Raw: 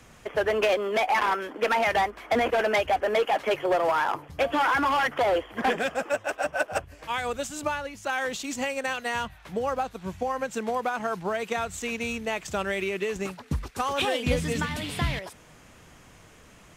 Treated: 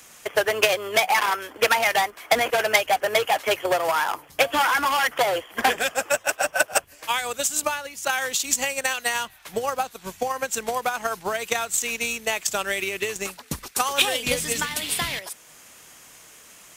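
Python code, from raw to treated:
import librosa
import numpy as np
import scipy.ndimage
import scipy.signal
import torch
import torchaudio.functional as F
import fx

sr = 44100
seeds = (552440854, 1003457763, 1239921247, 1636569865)

y = fx.octave_divider(x, sr, octaves=2, level_db=-5.0)
y = fx.riaa(y, sr, side='recording')
y = fx.transient(y, sr, attack_db=6, sustain_db=-2)
y = F.gain(torch.from_numpy(y), 1.0).numpy()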